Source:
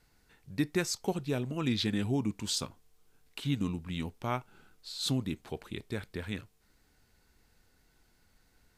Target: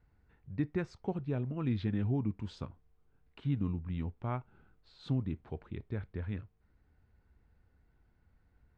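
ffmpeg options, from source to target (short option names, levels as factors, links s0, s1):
-af "lowpass=1800,equalizer=f=72:t=o:w=2:g=11.5,volume=0.531"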